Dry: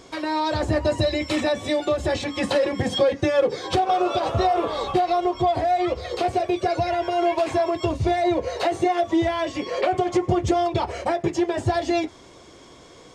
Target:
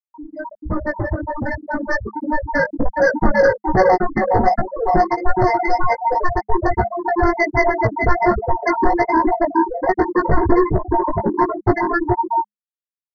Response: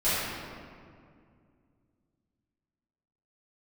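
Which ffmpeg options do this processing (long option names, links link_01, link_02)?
-filter_complex "[0:a]lowpass=frequency=2300:width=0.5412,lowpass=frequency=2300:width=1.3066,aeval=exprs='val(0)+0.0282*sin(2*PI*920*n/s)':channel_layout=same,aeval=exprs='0.376*(cos(1*acos(clip(val(0)/0.376,-1,1)))-cos(1*PI/2))+0.0266*(cos(2*acos(clip(val(0)/0.376,-1,1)))-cos(2*PI/2))+0.00299*(cos(3*acos(clip(val(0)/0.376,-1,1)))-cos(3*PI/2))+0.00531*(cos(5*acos(clip(val(0)/0.376,-1,1)))-cos(5*PI/2))+0.15*(cos(7*acos(clip(val(0)/0.376,-1,1)))-cos(7*PI/2))':channel_layout=same,asplit=2[link_01][link_02];[link_02]aecho=0:1:419|838|1257|1676|2095|2514:0.631|0.309|0.151|0.0742|0.0364|0.0178[link_03];[link_01][link_03]amix=inputs=2:normalize=0,afftfilt=real='re*gte(hypot(re,im),0.447)':imag='im*gte(hypot(re,im),0.447)':win_size=1024:overlap=0.75,equalizer=frequency=210:width=7.4:gain=12.5,acrossover=split=1200[link_04][link_05];[link_04]aeval=exprs='val(0)*(1-0.5/2+0.5/2*cos(2*PI*1.8*n/s))':channel_layout=same[link_06];[link_05]aeval=exprs='val(0)*(1-0.5/2-0.5/2*cos(2*PI*1.8*n/s))':channel_layout=same[link_07];[link_06][link_07]amix=inputs=2:normalize=0,aresample=16000,asoftclip=type=tanh:threshold=-22dB,aresample=44100,lowshelf=frequency=78:gain=10,flanger=delay=16:depth=2.2:speed=1.3,dynaudnorm=framelen=320:gausssize=13:maxgain=6.5dB,afftfilt=real='re*eq(mod(floor(b*sr/1024/2100),2),0)':imag='im*eq(mod(floor(b*sr/1024/2100),2),0)':win_size=1024:overlap=0.75,volume=9dB"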